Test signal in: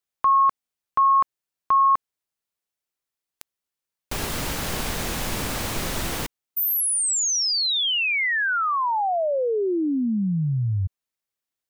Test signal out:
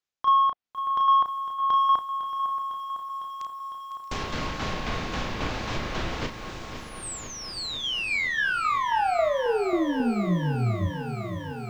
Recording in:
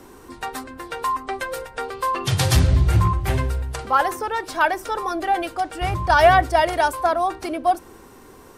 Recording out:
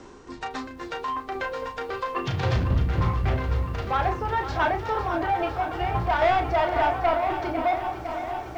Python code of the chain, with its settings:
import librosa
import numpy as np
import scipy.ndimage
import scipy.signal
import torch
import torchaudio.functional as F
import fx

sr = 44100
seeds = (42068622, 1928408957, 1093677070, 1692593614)

p1 = scipy.signal.sosfilt(scipy.signal.butter(8, 7300.0, 'lowpass', fs=sr, output='sos'), x)
p2 = p1 + fx.echo_single(p1, sr, ms=628, db=-15.0, dry=0)
p3 = fx.dynamic_eq(p2, sr, hz=720.0, q=4.2, threshold_db=-35.0, ratio=4.0, max_db=4)
p4 = 10.0 ** (-17.5 / 20.0) * np.tanh(p3 / 10.0 ** (-17.5 / 20.0))
p5 = fx.env_lowpass_down(p4, sr, base_hz=2700.0, full_db=-23.0)
p6 = fx.doubler(p5, sr, ms=34.0, db=-6.0)
p7 = fx.tremolo_shape(p6, sr, shape='saw_down', hz=3.7, depth_pct=50)
y = fx.echo_crushed(p7, sr, ms=504, feedback_pct=80, bits=9, wet_db=-11.0)